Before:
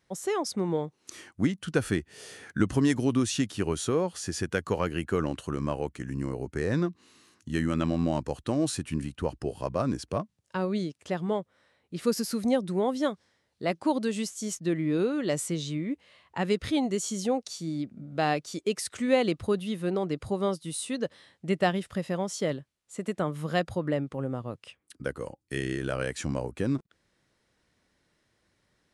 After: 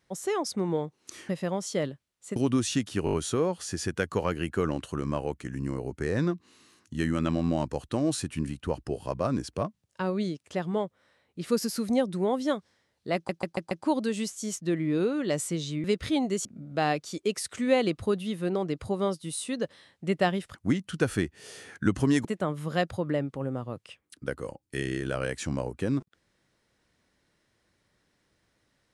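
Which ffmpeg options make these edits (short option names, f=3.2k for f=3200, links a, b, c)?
-filter_complex "[0:a]asplit=15[a][b][c][d][e][f][g][h][i][j][k][l][m][n][o];[a]atrim=end=1.292[p];[b]atrim=start=21.958:end=23.032[q];[c]atrim=start=2.988:end=3.702[r];[d]atrim=start=3.678:end=3.702[s];[e]atrim=start=3.678:end=3.702[t];[f]atrim=start=3.678:end=3.702[u];[g]atrim=start=3.678:end=13.842[v];[h]atrim=start=13.698:end=13.842[w];[i]atrim=start=13.698:end=13.842[x];[j]atrim=start=13.698:end=13.842[y];[k]atrim=start=13.698:end=15.832[z];[l]atrim=start=16.448:end=17.062[aa];[m]atrim=start=17.858:end=21.962[ab];[n]atrim=start=1.288:end=2.992[ac];[o]atrim=start=23.028[ad];[p][q]acrossfade=d=0.004:c1=hsin:c2=hsin[ae];[ae][r]acrossfade=d=0.004:c1=hsin:c2=hsin[af];[af][s]acrossfade=d=0.004:c1=hsin:c2=hsin[ag];[ag][t]acrossfade=d=0.004:c1=hsin:c2=hsin[ah];[ah][u]acrossfade=d=0.004:c1=hsin:c2=hsin[ai];[ai][v]acrossfade=d=0.004:c1=hsin:c2=hsin[aj];[aj][w]acrossfade=d=0.004:c1=hsin:c2=hsin[ak];[ak][x]acrossfade=d=0.004:c1=hsin:c2=hsin[al];[al][y]acrossfade=d=0.004:c1=hsin:c2=hsin[am];[am][z]acrossfade=d=0.004:c1=hsin:c2=hsin[an];[an][aa]acrossfade=d=0.004:c1=hsin:c2=hsin[ao];[ao][ab]acrossfade=d=0.004:c1=hsin:c2=hsin[ap];[ap][ac]acrossfade=d=0.004:c1=hsin:c2=hsin[aq];[aq][ad]acrossfade=d=0.004:c1=hsin:c2=hsin"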